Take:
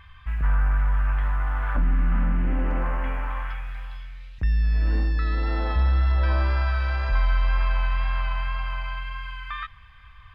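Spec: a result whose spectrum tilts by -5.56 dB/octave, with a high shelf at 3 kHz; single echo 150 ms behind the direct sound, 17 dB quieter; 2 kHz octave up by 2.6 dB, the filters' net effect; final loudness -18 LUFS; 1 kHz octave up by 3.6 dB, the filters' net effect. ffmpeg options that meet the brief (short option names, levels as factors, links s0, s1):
-af "equalizer=f=1000:t=o:g=4,equalizer=f=2000:t=o:g=4,highshelf=f=3000:g=-6.5,aecho=1:1:150:0.141,volume=2.37"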